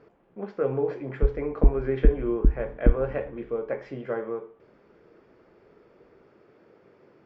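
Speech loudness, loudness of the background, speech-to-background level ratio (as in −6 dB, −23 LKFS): −30.5 LKFS, −28.0 LKFS, −2.5 dB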